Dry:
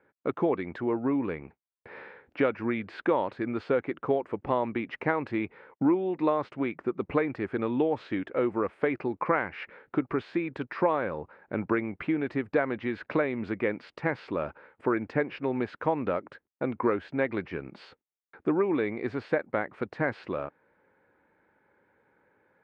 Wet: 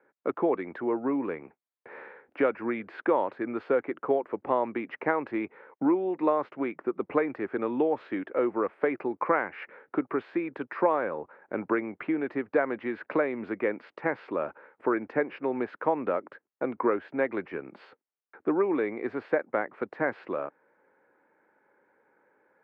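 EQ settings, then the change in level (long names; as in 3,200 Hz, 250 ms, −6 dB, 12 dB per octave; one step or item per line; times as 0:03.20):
high-pass filter 99 Hz
three-way crossover with the lows and the highs turned down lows −13 dB, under 240 Hz, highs −14 dB, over 2,400 Hz
+1.5 dB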